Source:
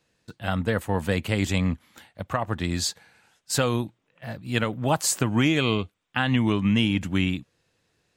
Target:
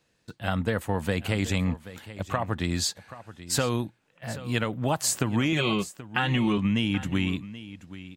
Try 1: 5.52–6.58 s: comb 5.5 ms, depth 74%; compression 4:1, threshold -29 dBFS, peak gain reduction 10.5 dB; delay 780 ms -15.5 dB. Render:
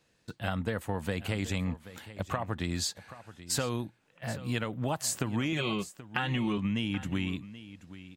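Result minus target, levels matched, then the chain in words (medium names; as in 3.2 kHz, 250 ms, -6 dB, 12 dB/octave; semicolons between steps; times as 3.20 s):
compression: peak gain reduction +6 dB
5.52–6.58 s: comb 5.5 ms, depth 74%; compression 4:1, threshold -21 dBFS, peak gain reduction 4.5 dB; delay 780 ms -15.5 dB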